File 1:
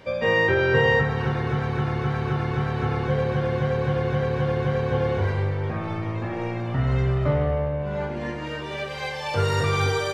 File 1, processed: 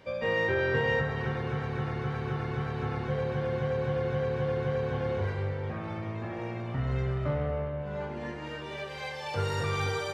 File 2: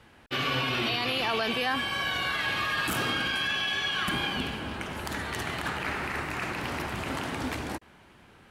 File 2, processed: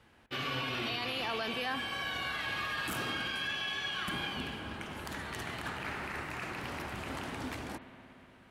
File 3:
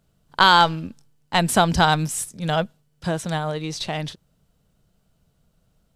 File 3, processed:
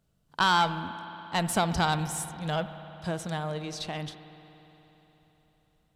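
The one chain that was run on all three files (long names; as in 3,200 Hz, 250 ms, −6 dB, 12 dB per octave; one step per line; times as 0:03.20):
one-sided soft clipper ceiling −8 dBFS
spring reverb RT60 3.9 s, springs 59 ms, chirp 75 ms, DRR 11 dB
level −7 dB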